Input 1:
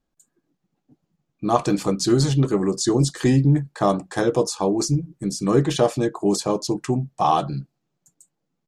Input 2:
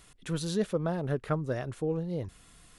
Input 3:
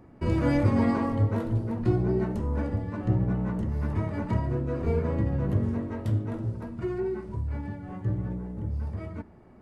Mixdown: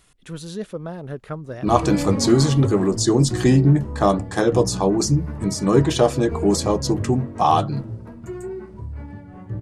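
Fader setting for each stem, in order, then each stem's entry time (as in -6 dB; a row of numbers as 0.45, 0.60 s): +2.0, -1.0, -1.5 dB; 0.20, 0.00, 1.45 s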